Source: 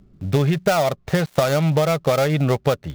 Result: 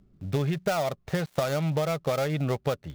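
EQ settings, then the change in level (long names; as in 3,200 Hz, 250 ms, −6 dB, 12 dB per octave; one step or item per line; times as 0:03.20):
no EQ move
−8.5 dB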